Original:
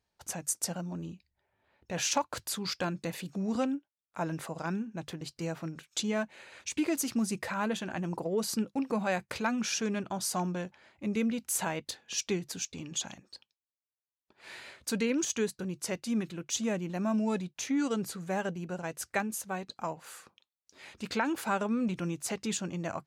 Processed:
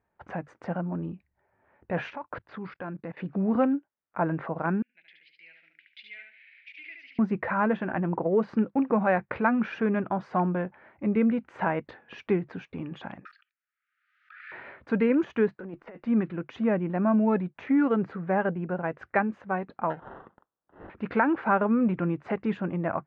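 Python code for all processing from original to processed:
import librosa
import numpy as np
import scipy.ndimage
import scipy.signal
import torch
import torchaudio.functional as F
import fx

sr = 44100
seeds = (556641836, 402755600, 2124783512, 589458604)

y = fx.chain(x, sr, fx.lowpass(hz=5900.0, slope=24),
    fx.level_steps(step_db=21), at=(2.1, 3.17))
y = fx.chain(y, sr, fx.ellip_bandpass(low_hz=2100.0, high_hz=5200.0, order=3, stop_db=40),
    fx.echo_feedback(ms=72, feedback_pct=28, wet_db=-4.5), at=(4.82, 7.19))
y = fx.chain(y, sr, fx.brickwall_highpass(low_hz=1200.0),
    fx.high_shelf(hz=3300.0, db=4.0),
    fx.pre_swell(db_per_s=46.0), at=(13.25, 14.52))
y = fx.chain(y, sr, fx.highpass(hz=270.0, slope=12),
    fx.over_compress(threshold_db=-44.0, ratio=-1.0),
    fx.tube_stage(drive_db=30.0, bias=0.55), at=(15.56, 16.06))
y = fx.chain(y, sr, fx.high_shelf(hz=4400.0, db=-6.5),
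    fx.sample_hold(seeds[0], rate_hz=2300.0, jitter_pct=0), at=(19.9, 20.9))
y = scipy.signal.sosfilt(scipy.signal.butter(4, 1900.0, 'lowpass', fs=sr, output='sos'), y)
y = fx.low_shelf(y, sr, hz=82.0, db=-7.5)
y = y * 10.0 ** (7.5 / 20.0)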